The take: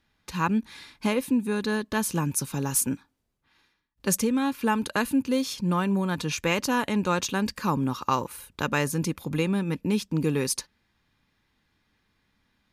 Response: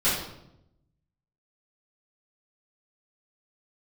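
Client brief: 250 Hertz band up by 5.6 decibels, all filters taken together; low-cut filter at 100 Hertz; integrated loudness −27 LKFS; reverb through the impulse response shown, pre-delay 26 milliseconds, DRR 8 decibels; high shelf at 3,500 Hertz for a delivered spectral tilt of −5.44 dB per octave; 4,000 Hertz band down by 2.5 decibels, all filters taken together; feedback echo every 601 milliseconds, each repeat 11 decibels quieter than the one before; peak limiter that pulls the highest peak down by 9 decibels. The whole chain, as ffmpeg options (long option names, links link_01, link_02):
-filter_complex "[0:a]highpass=100,equalizer=frequency=250:width_type=o:gain=7,highshelf=frequency=3500:gain=6,equalizer=frequency=4000:width_type=o:gain=-8,alimiter=limit=-15dB:level=0:latency=1,aecho=1:1:601|1202|1803:0.282|0.0789|0.0221,asplit=2[link_01][link_02];[1:a]atrim=start_sample=2205,adelay=26[link_03];[link_02][link_03]afir=irnorm=-1:irlink=0,volume=-21.5dB[link_04];[link_01][link_04]amix=inputs=2:normalize=0,volume=-3dB"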